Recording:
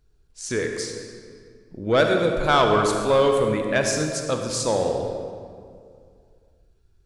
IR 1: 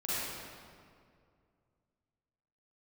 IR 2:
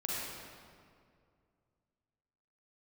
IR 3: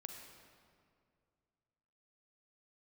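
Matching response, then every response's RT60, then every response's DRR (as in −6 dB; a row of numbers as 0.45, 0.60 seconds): 3; 2.2, 2.2, 2.2 seconds; −11.0, −6.0, 3.0 decibels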